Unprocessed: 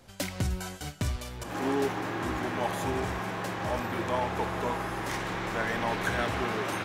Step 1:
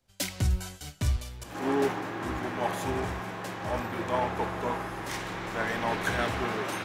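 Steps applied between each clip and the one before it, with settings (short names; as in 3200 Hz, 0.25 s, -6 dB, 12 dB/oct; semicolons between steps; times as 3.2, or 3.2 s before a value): three-band expander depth 70%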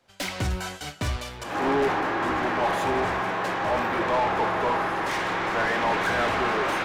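overdrive pedal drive 23 dB, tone 1600 Hz, clips at -15 dBFS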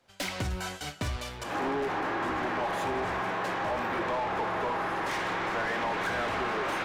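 compressor, threshold -26 dBFS, peak gain reduction 6.5 dB; gain -2 dB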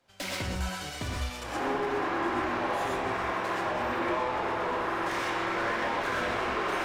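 non-linear reverb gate 0.15 s rising, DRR -1.5 dB; gain -3 dB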